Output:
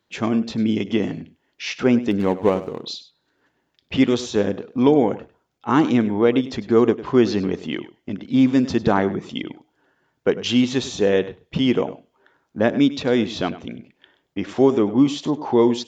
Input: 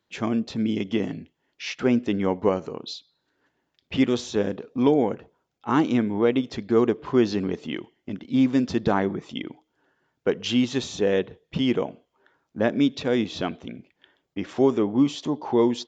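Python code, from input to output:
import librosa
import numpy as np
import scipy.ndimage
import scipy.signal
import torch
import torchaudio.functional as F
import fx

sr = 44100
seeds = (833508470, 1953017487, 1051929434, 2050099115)

y = fx.median_filter(x, sr, points=25, at=(2.11, 2.84))
y = y + 10.0 ** (-16.0 / 20.0) * np.pad(y, (int(100 * sr / 1000.0), 0))[:len(y)]
y = y * 10.0 ** (4.0 / 20.0)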